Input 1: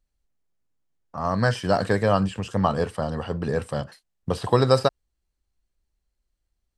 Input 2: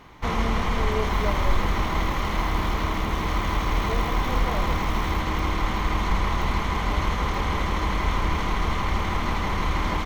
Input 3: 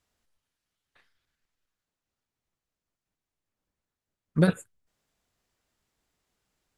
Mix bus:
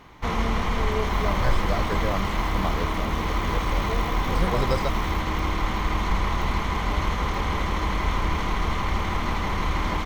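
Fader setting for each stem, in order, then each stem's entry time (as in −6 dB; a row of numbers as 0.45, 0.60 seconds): −9.0, −0.5, −9.5 decibels; 0.00, 0.00, 0.00 seconds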